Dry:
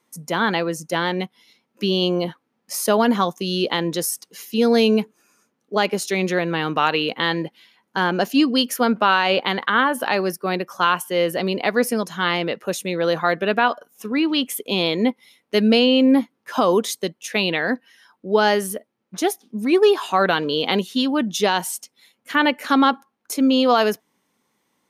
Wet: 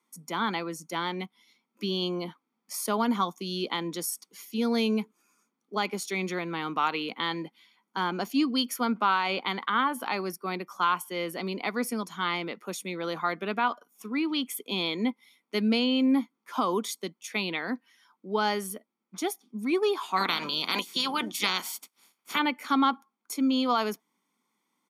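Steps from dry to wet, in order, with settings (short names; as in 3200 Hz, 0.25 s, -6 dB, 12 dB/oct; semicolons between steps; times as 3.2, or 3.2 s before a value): 20.16–22.38 spectral limiter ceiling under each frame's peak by 25 dB; HPF 190 Hz 24 dB/oct; comb 0.9 ms, depth 53%; gain -9 dB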